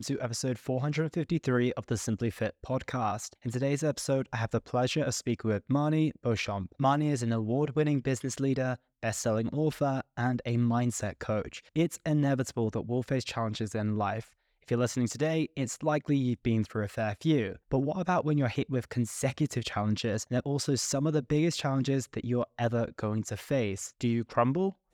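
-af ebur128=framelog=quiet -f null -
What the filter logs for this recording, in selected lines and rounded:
Integrated loudness:
  I:         -30.5 LUFS
  Threshold: -40.6 LUFS
Loudness range:
  LRA:         2.1 LU
  Threshold: -50.5 LUFS
  LRA low:   -31.5 LUFS
  LRA high:  -29.5 LUFS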